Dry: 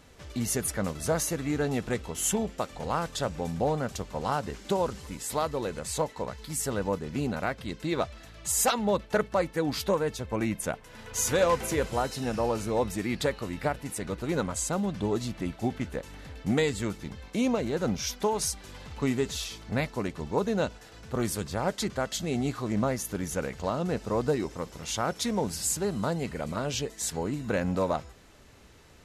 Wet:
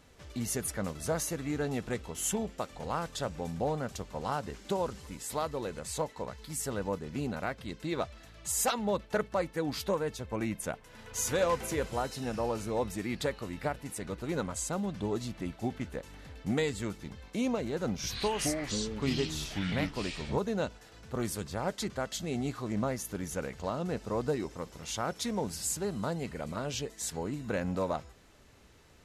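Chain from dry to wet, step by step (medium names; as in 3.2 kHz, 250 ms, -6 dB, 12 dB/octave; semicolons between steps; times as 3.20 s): 17.94–20.38 s: ever faster or slower copies 93 ms, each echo -6 st, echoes 3; trim -4.5 dB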